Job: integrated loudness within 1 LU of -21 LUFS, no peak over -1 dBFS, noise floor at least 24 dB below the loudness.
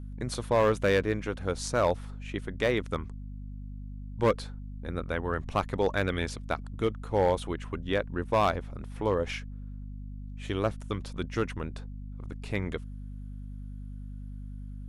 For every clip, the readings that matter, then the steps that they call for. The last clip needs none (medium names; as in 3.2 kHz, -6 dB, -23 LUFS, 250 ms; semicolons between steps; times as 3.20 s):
clipped samples 0.4%; clipping level -17.0 dBFS; hum 50 Hz; highest harmonic 250 Hz; hum level -37 dBFS; loudness -30.5 LUFS; peak level -17.0 dBFS; loudness target -21.0 LUFS
-> clip repair -17 dBFS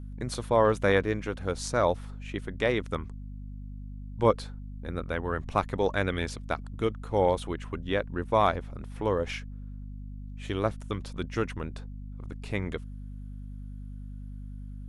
clipped samples 0.0%; hum 50 Hz; highest harmonic 250 Hz; hum level -37 dBFS
-> de-hum 50 Hz, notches 5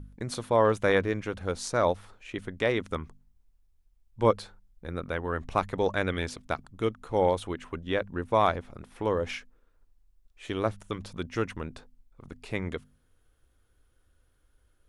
hum not found; loudness -29.5 LUFS; peak level -10.0 dBFS; loudness target -21.0 LUFS
-> trim +8.5 dB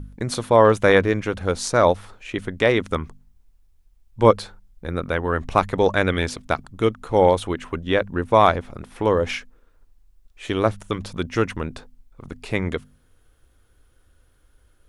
loudness -21.5 LUFS; peak level -1.5 dBFS; noise floor -59 dBFS